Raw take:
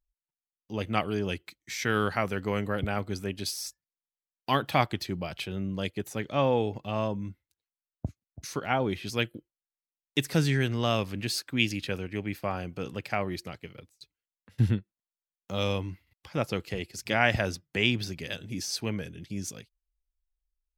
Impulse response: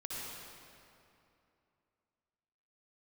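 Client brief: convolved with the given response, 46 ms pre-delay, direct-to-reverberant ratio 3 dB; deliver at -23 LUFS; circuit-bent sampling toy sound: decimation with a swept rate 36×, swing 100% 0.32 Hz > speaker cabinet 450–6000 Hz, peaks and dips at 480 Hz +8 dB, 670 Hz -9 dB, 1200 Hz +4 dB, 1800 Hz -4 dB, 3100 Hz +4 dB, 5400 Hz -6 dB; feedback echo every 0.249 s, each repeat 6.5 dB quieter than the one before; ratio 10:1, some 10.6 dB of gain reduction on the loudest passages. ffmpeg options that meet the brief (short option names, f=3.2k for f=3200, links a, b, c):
-filter_complex "[0:a]acompressor=threshold=-29dB:ratio=10,aecho=1:1:249|498|747|996|1245|1494:0.473|0.222|0.105|0.0491|0.0231|0.0109,asplit=2[a][b];[1:a]atrim=start_sample=2205,adelay=46[c];[b][c]afir=irnorm=-1:irlink=0,volume=-4dB[d];[a][d]amix=inputs=2:normalize=0,acrusher=samples=36:mix=1:aa=0.000001:lfo=1:lforange=36:lforate=0.32,highpass=450,equalizer=f=480:t=q:w=4:g=8,equalizer=f=670:t=q:w=4:g=-9,equalizer=f=1.2k:t=q:w=4:g=4,equalizer=f=1.8k:t=q:w=4:g=-4,equalizer=f=3.1k:t=q:w=4:g=4,equalizer=f=5.4k:t=q:w=4:g=-6,lowpass=f=6k:w=0.5412,lowpass=f=6k:w=1.3066,volume=14.5dB"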